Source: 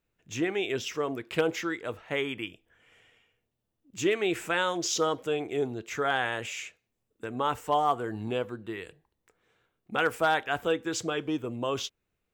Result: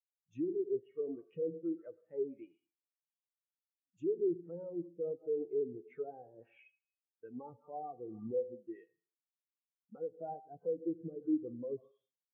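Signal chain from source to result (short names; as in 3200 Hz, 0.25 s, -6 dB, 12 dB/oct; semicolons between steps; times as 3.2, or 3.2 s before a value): FFT band-pass 100–9000 Hz; resonator 170 Hz, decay 0.3 s, harmonics odd, mix 70%; on a send at -10 dB: reverb RT60 0.95 s, pre-delay 67 ms; on the sum: treble ducked by the level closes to 490 Hz, closed at -34.5 dBFS; limiter -34.5 dBFS, peak gain reduction 9 dB; spectral expander 2.5:1; gain +10.5 dB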